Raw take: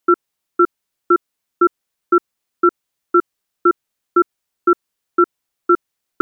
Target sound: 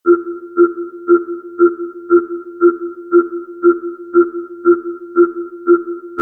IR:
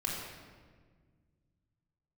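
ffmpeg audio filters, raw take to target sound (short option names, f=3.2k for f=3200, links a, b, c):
-filter_complex "[0:a]asplit=2[a][b];[1:a]atrim=start_sample=2205,adelay=70[c];[b][c]afir=irnorm=-1:irlink=0,volume=-17dB[d];[a][d]amix=inputs=2:normalize=0,afftfilt=real='re*2*eq(mod(b,4),0)':imag='im*2*eq(mod(b,4),0)':win_size=2048:overlap=0.75,volume=5.5dB"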